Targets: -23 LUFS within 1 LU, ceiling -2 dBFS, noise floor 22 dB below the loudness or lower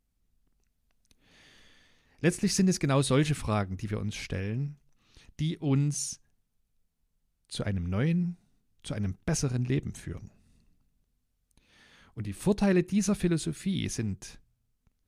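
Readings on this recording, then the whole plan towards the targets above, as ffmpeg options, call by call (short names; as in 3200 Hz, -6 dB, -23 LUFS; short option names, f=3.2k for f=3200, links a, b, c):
loudness -29.5 LUFS; peak -12.0 dBFS; loudness target -23.0 LUFS
-> -af "volume=6.5dB"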